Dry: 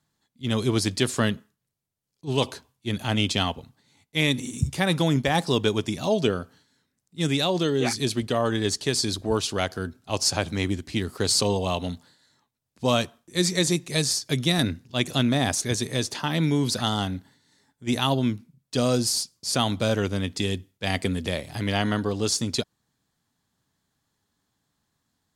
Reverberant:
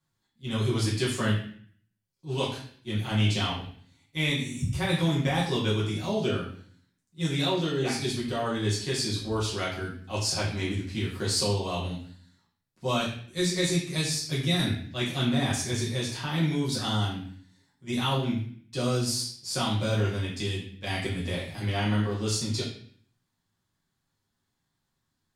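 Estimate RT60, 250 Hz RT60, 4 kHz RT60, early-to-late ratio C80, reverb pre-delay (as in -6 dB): 0.55 s, 0.75 s, 0.55 s, 8.0 dB, 5 ms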